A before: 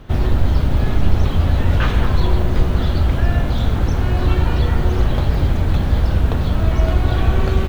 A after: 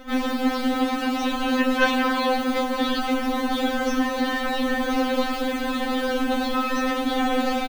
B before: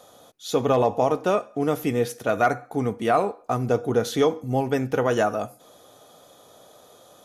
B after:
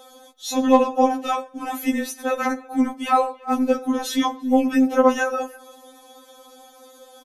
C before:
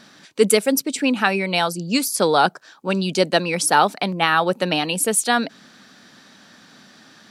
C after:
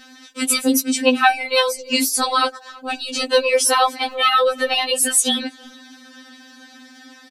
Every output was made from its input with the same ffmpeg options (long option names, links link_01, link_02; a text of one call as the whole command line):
ffmpeg -i in.wav -filter_complex "[0:a]afftfilt=real='re*lt(hypot(re,im),1.26)':imag='im*lt(hypot(re,im),1.26)':win_size=1024:overlap=0.75,acrossover=split=230|500|3000[link_01][link_02][link_03][link_04];[link_01]asoftclip=type=tanh:threshold=-30dB[link_05];[link_05][link_02][link_03][link_04]amix=inputs=4:normalize=0,asplit=2[link_06][link_07];[link_07]adelay=330,highpass=300,lowpass=3400,asoftclip=type=hard:threshold=-12.5dB,volume=-23dB[link_08];[link_06][link_08]amix=inputs=2:normalize=0,afftfilt=real='re*3.46*eq(mod(b,12),0)':imag='im*3.46*eq(mod(b,12),0)':win_size=2048:overlap=0.75,volume=6dB" out.wav